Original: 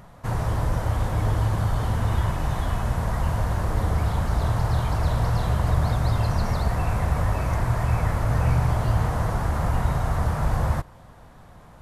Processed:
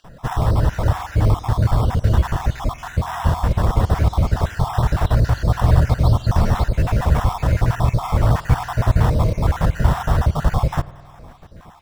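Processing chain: random holes in the spectrogram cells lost 48%; low-pass 7.3 kHz 24 dB/octave; in parallel at -4.5 dB: sample-and-hold 10×; on the sum: spring tank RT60 2.1 s, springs 50 ms, chirp 50 ms, DRR 18 dB; trim +4 dB

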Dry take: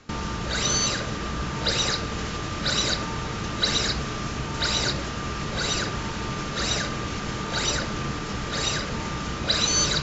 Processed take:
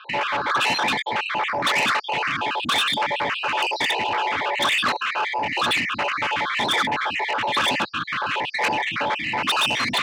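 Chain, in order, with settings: random holes in the spectrogram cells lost 53%; in parallel at -5 dB: integer overflow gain 18 dB; on the sum: tilt shelf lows -6.5 dB, about 740 Hz; reverse; upward compressor, threshold -28 dBFS; reverse; mistuned SSB -330 Hz 280–3400 Hz; saturation -25 dBFS, distortion -11 dB; high-pass 180 Hz 12 dB/octave; trim +8.5 dB

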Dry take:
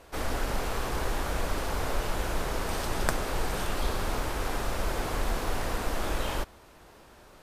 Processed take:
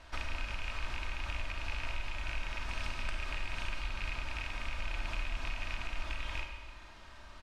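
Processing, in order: rattle on loud lows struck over -32 dBFS, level -17 dBFS; low-pass 4.7 kHz 12 dB/octave; peaking EQ 400 Hz -15 dB 1.8 oct; comb 3.2 ms, depth 48%; compression 5:1, threshold -37 dBFS, peak gain reduction 15.5 dB; Schroeder reverb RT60 1.4 s, combs from 33 ms, DRR 3.5 dB; trim +2 dB

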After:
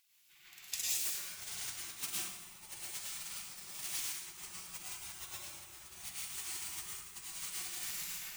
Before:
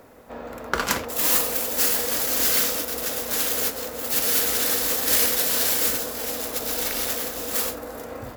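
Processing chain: 4.85–7.00 s: high-pass 95 Hz 24 dB/octave; spectral gate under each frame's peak -25 dB weak; filtered feedback delay 69 ms, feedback 76%, level -9 dB; plate-style reverb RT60 1.3 s, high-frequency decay 0.75×, pre-delay 90 ms, DRR -5.5 dB; dynamic bell 7.1 kHz, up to +4 dB, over -55 dBFS, Q 1.2; upward expansion 1.5:1, over -57 dBFS; trim +1.5 dB

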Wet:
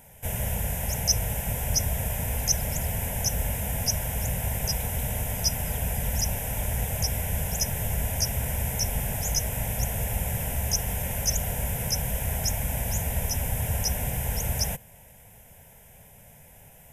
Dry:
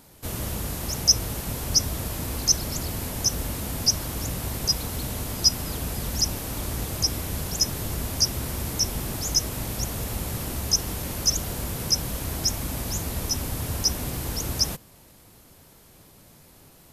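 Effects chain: static phaser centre 1.2 kHz, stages 6; trim +3.5 dB

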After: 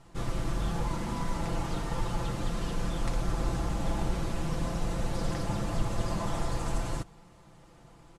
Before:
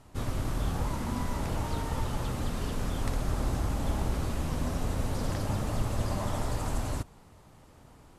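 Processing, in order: low-pass 9.3 kHz 12 dB/octave; comb 5.9 ms; trim -1 dB

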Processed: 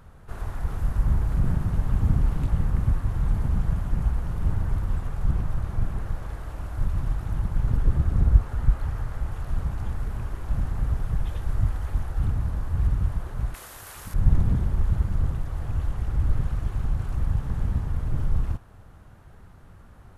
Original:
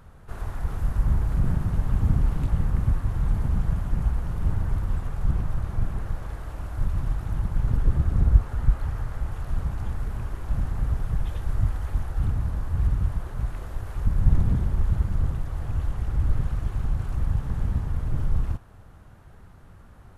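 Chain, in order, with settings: 13.54–14.14 s: tilt EQ +4.5 dB/octave

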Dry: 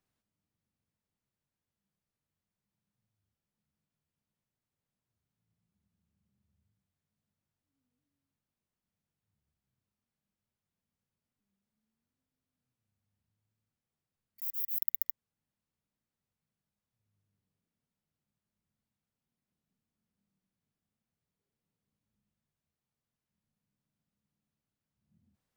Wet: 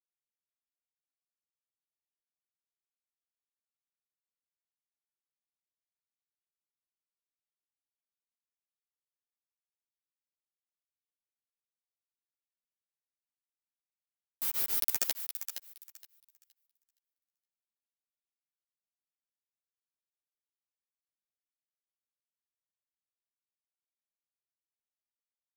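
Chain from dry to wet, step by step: peaking EQ 10 kHz +12 dB 0.29 oct; band-stop 6.4 kHz, Q 6.7; in parallel at 0 dB: compression 16:1, threshold -39 dBFS, peak gain reduction 16.5 dB; on the sum: comb of notches 950 Hz; integer overflow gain 13 dB; word length cut 6-bit, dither none; thinning echo 468 ms, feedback 21%, high-pass 910 Hz, level -9 dB; three-phase chorus; trim +6 dB

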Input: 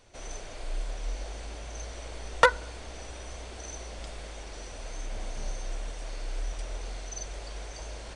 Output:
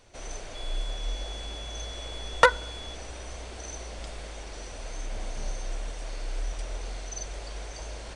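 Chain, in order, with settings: 0.54–2.94 s: whistle 3.4 kHz -43 dBFS; trim +1.5 dB

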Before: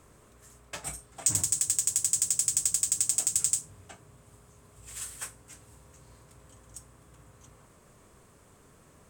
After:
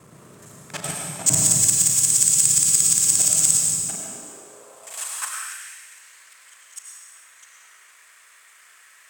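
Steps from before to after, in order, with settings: time reversed locally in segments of 35 ms; algorithmic reverb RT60 1.7 s, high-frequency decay 1×, pre-delay 55 ms, DRR -1 dB; high-pass sweep 150 Hz -> 1.9 kHz, 3.76–5.72 s; trim +7.5 dB

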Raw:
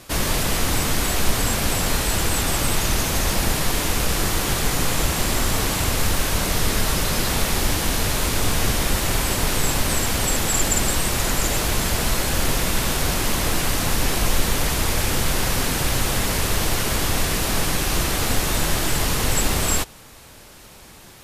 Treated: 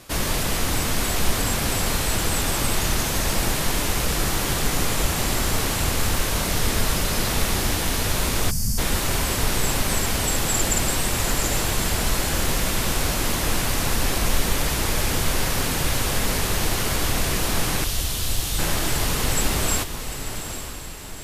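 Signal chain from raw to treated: 17.84–18.59 s: elliptic band-stop 110–3000 Hz; echo that smears into a reverb 850 ms, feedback 47%, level -9 dB; 8.51–8.78 s: time-frequency box 250–4400 Hz -21 dB; trim -2 dB

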